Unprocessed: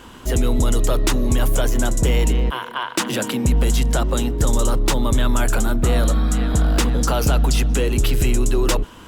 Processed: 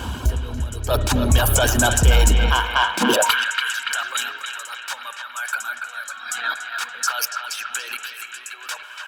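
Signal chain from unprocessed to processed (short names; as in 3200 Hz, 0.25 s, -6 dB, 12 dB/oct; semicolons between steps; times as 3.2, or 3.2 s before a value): reverb removal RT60 1 s; 0.89–3.01 low shelf 420 Hz -9 dB; negative-ratio compressor -25 dBFS, ratio -0.5; comb 1.3 ms, depth 35%; narrowing echo 0.286 s, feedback 69%, band-pass 2000 Hz, level -5 dB; reverb RT60 1.6 s, pre-delay 55 ms, DRR 11.5 dB; high-pass sweep 68 Hz -> 1500 Hz, 2.81–3.35; soft clip -12 dBFS, distortion -20 dB; bell 65 Hz +11 dB 0.22 oct; notch 2000 Hz, Q 6.3; gain +5 dB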